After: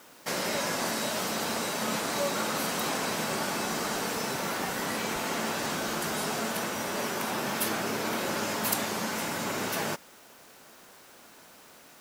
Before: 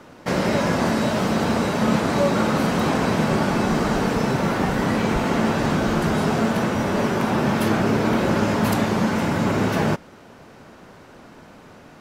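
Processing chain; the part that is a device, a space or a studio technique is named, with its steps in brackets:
turntable without a phono preamp (RIAA equalisation recording; white noise bed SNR 27 dB)
level −8 dB

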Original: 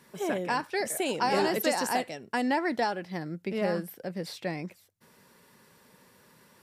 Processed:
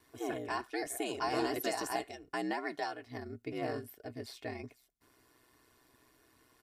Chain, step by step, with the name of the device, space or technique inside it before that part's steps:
0:02.53–0:03.07: low-shelf EQ 280 Hz −11.5 dB
ring-modulated robot voice (ring modulation 63 Hz; comb filter 2.8 ms, depth 61%)
level −6 dB

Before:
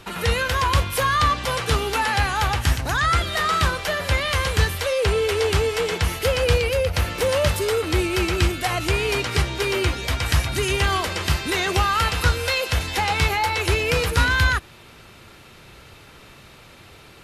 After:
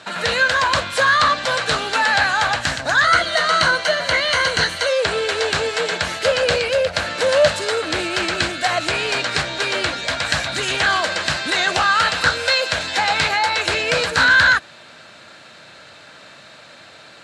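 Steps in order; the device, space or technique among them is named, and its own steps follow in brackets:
full-range speaker at full volume (highs frequency-modulated by the lows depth 0.38 ms; loudspeaker in its box 190–8,700 Hz, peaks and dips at 390 Hz −8 dB, 620 Hz +9 dB, 1,600 Hz +9 dB, 4,100 Hz +8 dB, 7,600 Hz +5 dB)
0:03.04–0:04.89: EQ curve with evenly spaced ripples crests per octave 1.9, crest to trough 9 dB
level +1.5 dB

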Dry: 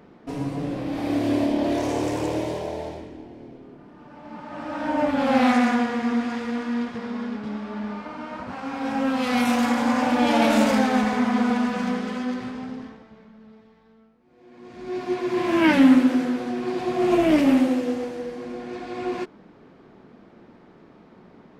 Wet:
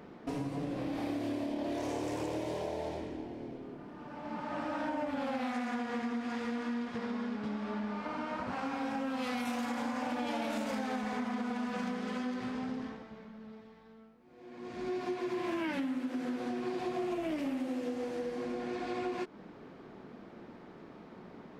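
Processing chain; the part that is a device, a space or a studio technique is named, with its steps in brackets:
serial compression, leveller first (downward compressor 2.5 to 1, threshold −21 dBFS, peak gain reduction 7.5 dB; downward compressor 5 to 1, threshold −33 dBFS, peak gain reduction 14 dB)
low-shelf EQ 170 Hz −3 dB

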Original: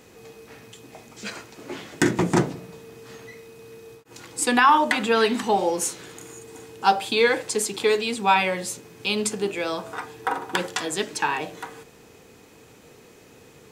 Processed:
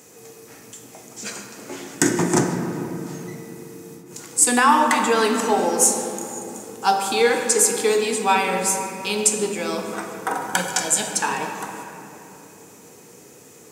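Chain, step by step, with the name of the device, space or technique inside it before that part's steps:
0:10.35–0:11.11: comb filter 1.3 ms, depth 83%
budget condenser microphone (high-pass filter 120 Hz 12 dB per octave; high shelf with overshoot 5,100 Hz +8.5 dB, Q 1.5)
rectangular room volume 170 cubic metres, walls hard, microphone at 0.33 metres

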